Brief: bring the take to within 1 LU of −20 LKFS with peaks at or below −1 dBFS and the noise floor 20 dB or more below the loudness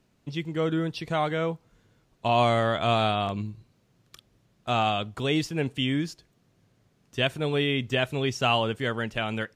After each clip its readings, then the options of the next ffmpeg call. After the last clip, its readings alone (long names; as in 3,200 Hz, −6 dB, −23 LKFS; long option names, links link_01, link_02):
integrated loudness −27.0 LKFS; sample peak −10.5 dBFS; target loudness −20.0 LKFS
→ -af "volume=7dB"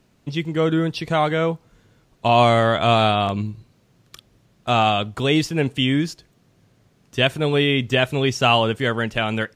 integrated loudness −20.0 LKFS; sample peak −3.5 dBFS; background noise floor −60 dBFS